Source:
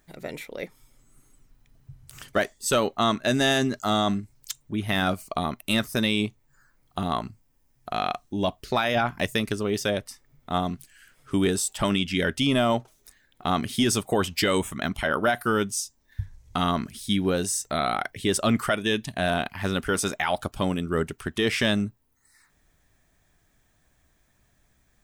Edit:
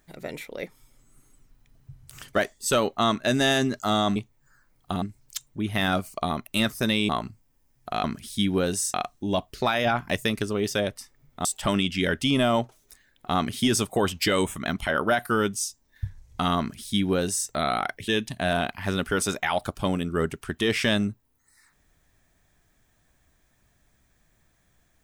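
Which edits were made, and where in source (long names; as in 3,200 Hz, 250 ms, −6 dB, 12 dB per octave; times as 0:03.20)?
0:06.23–0:07.09: move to 0:04.16
0:10.55–0:11.61: remove
0:16.75–0:17.65: duplicate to 0:08.04
0:18.24–0:18.85: remove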